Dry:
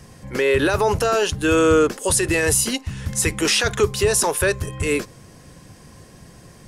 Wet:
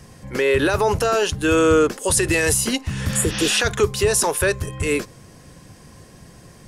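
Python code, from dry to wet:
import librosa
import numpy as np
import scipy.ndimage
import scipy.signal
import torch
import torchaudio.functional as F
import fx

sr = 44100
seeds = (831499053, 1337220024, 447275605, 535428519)

y = fx.spec_repair(x, sr, seeds[0], start_s=3.11, length_s=0.44, low_hz=590.0, high_hz=6600.0, source='both')
y = fx.band_squash(y, sr, depth_pct=70, at=(2.17, 3.72))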